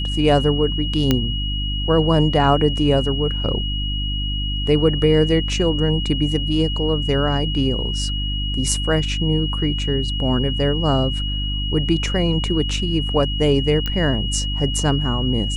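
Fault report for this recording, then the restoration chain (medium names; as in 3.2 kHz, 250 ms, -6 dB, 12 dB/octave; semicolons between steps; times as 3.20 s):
hum 50 Hz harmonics 6 -24 dBFS
whine 2.9 kHz -26 dBFS
1.11 s: pop -3 dBFS
13.86 s: pop -10 dBFS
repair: de-click; band-stop 2.9 kHz, Q 30; de-hum 50 Hz, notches 6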